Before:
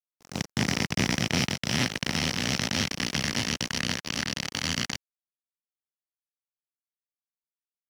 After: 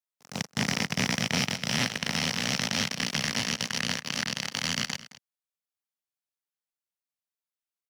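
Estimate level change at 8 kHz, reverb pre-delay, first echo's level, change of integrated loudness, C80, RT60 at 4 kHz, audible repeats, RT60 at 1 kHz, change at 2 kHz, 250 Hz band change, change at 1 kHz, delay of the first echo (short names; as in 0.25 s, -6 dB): 0.0 dB, none, -17.0 dB, -0.5 dB, none, none, 1, none, 0.0 dB, -2.5 dB, 0.0 dB, 0.216 s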